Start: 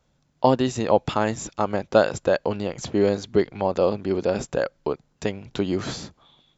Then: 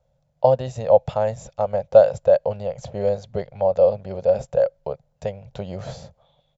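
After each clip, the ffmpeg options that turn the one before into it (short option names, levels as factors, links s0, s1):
-af "firequalizer=gain_entry='entry(140,0);entry(310,-24);entry(540,7);entry(1100,-11)':delay=0.05:min_phase=1,volume=1.12"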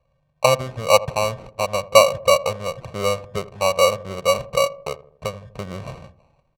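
-filter_complex "[0:a]acrusher=samples=26:mix=1:aa=0.000001,asplit=2[s0][s1];[s1]adelay=81,lowpass=f=820:p=1,volume=0.178,asplit=2[s2][s3];[s3]adelay=81,lowpass=f=820:p=1,volume=0.55,asplit=2[s4][s5];[s5]adelay=81,lowpass=f=820:p=1,volume=0.55,asplit=2[s6][s7];[s7]adelay=81,lowpass=f=820:p=1,volume=0.55,asplit=2[s8][s9];[s9]adelay=81,lowpass=f=820:p=1,volume=0.55[s10];[s0][s2][s4][s6][s8][s10]amix=inputs=6:normalize=0,adynamicsmooth=sensitivity=3.5:basefreq=4500"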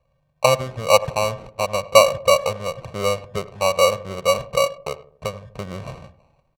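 -filter_complex "[0:a]asplit=2[s0][s1];[s1]adelay=100,highpass=300,lowpass=3400,asoftclip=type=hard:threshold=0.282,volume=0.1[s2];[s0][s2]amix=inputs=2:normalize=0"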